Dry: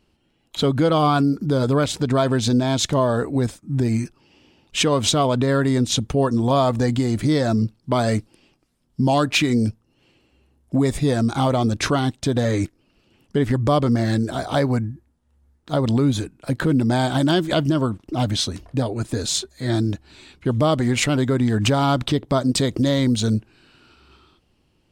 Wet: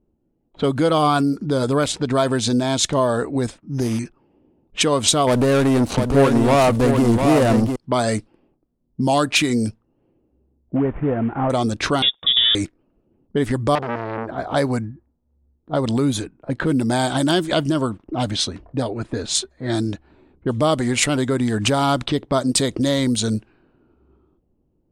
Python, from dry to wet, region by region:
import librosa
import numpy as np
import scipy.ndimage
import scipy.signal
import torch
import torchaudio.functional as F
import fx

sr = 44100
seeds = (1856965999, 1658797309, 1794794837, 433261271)

y = fx.chain(x, sr, fx.resample_bad(factor=8, down='none', up='hold'),
    fx.doppler_dist(depth_ms=0.17), at=(3.58, 3.99))
y = fx.chain(y, sr, fx.median_filter(points=25),
    fx.leveller(passes=2),
    fx.echo_single(ms=700, db=-5.5), at=(5.27, 7.76))
y = fx.chain(y, sr, fx.cvsd(bps=16000),
    fx.lowpass(hz=1400.0, slope=12), at=(10.76, 11.5))
y = fx.chain(y, sr, fx.law_mismatch(coded='A'),
    fx.low_shelf(hz=110.0, db=6.0),
    fx.freq_invert(carrier_hz=3600), at=(12.02, 12.55))
y = fx.chain(y, sr, fx.highpass(hz=55.0, slope=6),
    fx.air_absorb(metres=93.0),
    fx.transformer_sat(knee_hz=1300.0), at=(13.75, 14.38))
y = fx.peak_eq(y, sr, hz=9700.0, db=9.5, octaves=0.66)
y = fx.env_lowpass(y, sr, base_hz=450.0, full_db=-14.5)
y = fx.peak_eq(y, sr, hz=100.0, db=-5.5, octaves=2.1)
y = F.gain(torch.from_numpy(y), 1.5).numpy()